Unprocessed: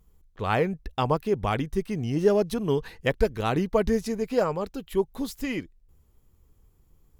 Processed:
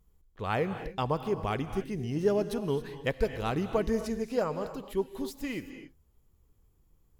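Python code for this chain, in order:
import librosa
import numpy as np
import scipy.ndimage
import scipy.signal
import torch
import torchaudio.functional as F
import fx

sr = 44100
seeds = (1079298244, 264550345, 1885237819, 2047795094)

y = fx.rev_gated(x, sr, seeds[0], gate_ms=300, shape='rising', drr_db=10.0)
y = y * 10.0 ** (-5.5 / 20.0)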